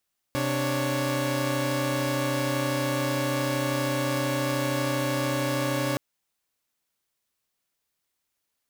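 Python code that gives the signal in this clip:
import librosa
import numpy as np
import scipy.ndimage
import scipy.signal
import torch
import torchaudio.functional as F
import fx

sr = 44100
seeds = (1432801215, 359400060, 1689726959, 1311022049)

y = fx.chord(sr, length_s=5.62, notes=(48, 62, 73), wave='saw', level_db=-26.5)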